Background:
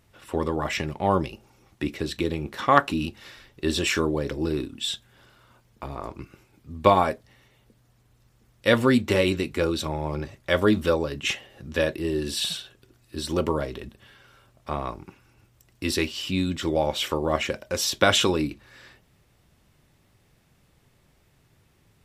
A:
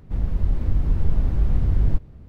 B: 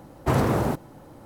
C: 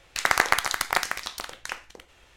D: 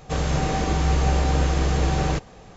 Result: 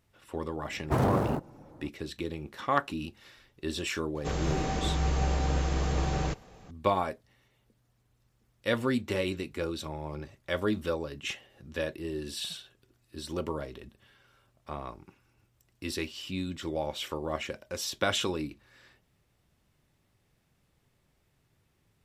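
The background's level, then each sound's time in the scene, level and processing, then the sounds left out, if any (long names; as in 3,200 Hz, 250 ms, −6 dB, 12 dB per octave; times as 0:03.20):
background −9 dB
0:00.64: mix in B −4.5 dB + adaptive Wiener filter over 15 samples
0:04.15: mix in D −7.5 dB
not used: A, C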